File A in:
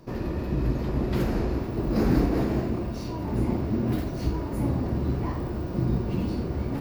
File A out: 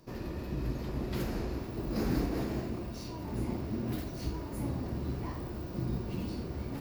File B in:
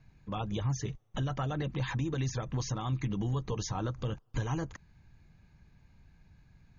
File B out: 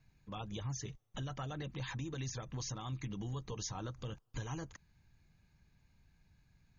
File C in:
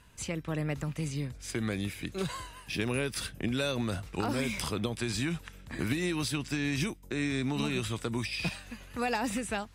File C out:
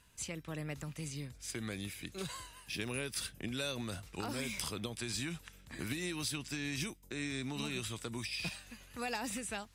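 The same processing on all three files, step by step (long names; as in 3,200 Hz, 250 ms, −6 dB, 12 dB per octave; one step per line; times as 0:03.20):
high-shelf EQ 2,800 Hz +8.5 dB
level −9 dB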